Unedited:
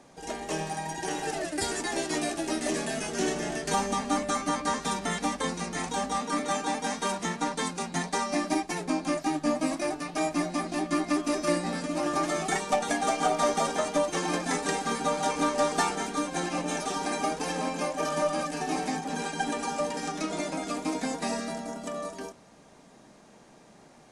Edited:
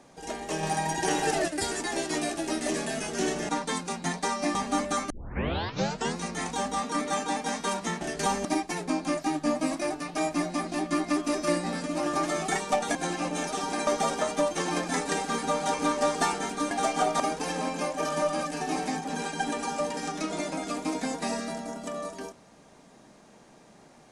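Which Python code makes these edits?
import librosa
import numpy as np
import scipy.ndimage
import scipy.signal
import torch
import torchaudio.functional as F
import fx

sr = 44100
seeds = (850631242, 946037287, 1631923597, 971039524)

y = fx.edit(x, sr, fx.clip_gain(start_s=0.63, length_s=0.85, db=5.5),
    fx.swap(start_s=3.49, length_s=0.44, other_s=7.39, other_length_s=1.06),
    fx.tape_start(start_s=4.48, length_s=1.08),
    fx.swap(start_s=12.95, length_s=0.49, other_s=16.28, other_length_s=0.92), tone=tone)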